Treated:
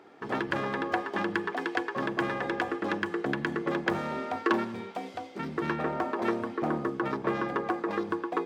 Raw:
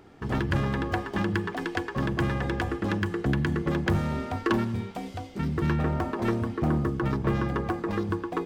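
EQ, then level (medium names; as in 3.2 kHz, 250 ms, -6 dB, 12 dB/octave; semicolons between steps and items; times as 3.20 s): high-pass 350 Hz 12 dB/octave; treble shelf 5.7 kHz -11.5 dB; band-stop 2.9 kHz, Q 25; +2.0 dB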